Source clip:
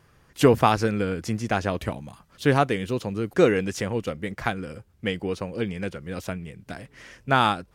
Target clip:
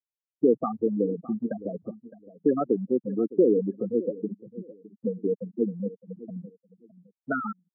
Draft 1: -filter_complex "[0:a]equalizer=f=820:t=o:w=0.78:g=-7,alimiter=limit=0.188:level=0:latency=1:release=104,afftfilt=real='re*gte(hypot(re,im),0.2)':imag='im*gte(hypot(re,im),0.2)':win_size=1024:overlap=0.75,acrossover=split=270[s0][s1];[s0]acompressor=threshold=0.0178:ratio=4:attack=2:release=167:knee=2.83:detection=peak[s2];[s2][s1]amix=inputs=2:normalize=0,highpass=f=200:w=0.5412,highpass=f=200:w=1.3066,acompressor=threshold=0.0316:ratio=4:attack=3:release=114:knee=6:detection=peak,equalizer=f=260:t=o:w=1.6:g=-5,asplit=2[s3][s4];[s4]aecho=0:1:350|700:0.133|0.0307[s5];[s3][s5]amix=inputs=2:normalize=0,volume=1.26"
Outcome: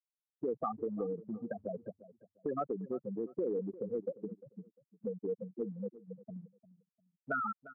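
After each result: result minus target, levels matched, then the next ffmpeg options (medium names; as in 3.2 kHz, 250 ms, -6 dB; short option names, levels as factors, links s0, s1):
compression: peak gain reduction +9 dB; echo 262 ms early; 250 Hz band -2.0 dB
-filter_complex "[0:a]equalizer=f=820:t=o:w=0.78:g=-7,alimiter=limit=0.188:level=0:latency=1:release=104,afftfilt=real='re*gte(hypot(re,im),0.2)':imag='im*gte(hypot(re,im),0.2)':win_size=1024:overlap=0.75,acrossover=split=270[s0][s1];[s0]acompressor=threshold=0.0178:ratio=4:attack=2:release=167:knee=2.83:detection=peak[s2];[s2][s1]amix=inputs=2:normalize=0,highpass=f=200:w=0.5412,highpass=f=200:w=1.3066,equalizer=f=260:t=o:w=1.6:g=-5,asplit=2[s3][s4];[s4]aecho=0:1:350|700:0.133|0.0307[s5];[s3][s5]amix=inputs=2:normalize=0,volume=1.26"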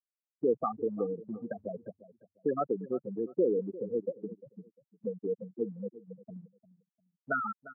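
echo 262 ms early; 250 Hz band -3.0 dB
-filter_complex "[0:a]equalizer=f=820:t=o:w=0.78:g=-7,alimiter=limit=0.188:level=0:latency=1:release=104,afftfilt=real='re*gte(hypot(re,im),0.2)':imag='im*gte(hypot(re,im),0.2)':win_size=1024:overlap=0.75,acrossover=split=270[s0][s1];[s0]acompressor=threshold=0.0178:ratio=4:attack=2:release=167:knee=2.83:detection=peak[s2];[s2][s1]amix=inputs=2:normalize=0,highpass=f=200:w=0.5412,highpass=f=200:w=1.3066,equalizer=f=260:t=o:w=1.6:g=-5,asplit=2[s3][s4];[s4]aecho=0:1:612|1224:0.133|0.0307[s5];[s3][s5]amix=inputs=2:normalize=0,volume=1.26"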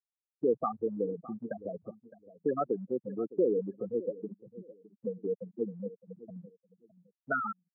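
250 Hz band -3.0 dB
-filter_complex "[0:a]equalizer=f=820:t=o:w=0.78:g=-7,alimiter=limit=0.188:level=0:latency=1:release=104,afftfilt=real='re*gte(hypot(re,im),0.2)':imag='im*gte(hypot(re,im),0.2)':win_size=1024:overlap=0.75,acrossover=split=270[s0][s1];[s0]acompressor=threshold=0.0178:ratio=4:attack=2:release=167:knee=2.83:detection=peak[s2];[s2][s1]amix=inputs=2:normalize=0,highpass=f=200:w=0.5412,highpass=f=200:w=1.3066,equalizer=f=260:t=o:w=1.6:g=6.5,asplit=2[s3][s4];[s4]aecho=0:1:612|1224:0.133|0.0307[s5];[s3][s5]amix=inputs=2:normalize=0,volume=1.26"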